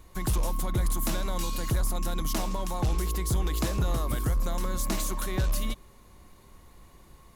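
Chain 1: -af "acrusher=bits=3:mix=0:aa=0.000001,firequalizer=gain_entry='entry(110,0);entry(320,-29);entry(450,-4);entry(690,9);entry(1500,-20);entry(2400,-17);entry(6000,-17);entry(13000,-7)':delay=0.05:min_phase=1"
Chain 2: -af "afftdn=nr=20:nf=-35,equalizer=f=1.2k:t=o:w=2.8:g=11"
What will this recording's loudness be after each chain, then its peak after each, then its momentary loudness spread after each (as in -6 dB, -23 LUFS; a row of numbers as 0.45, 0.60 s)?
-29.5, -28.0 LUFS; -11.5, -13.0 dBFS; 7, 3 LU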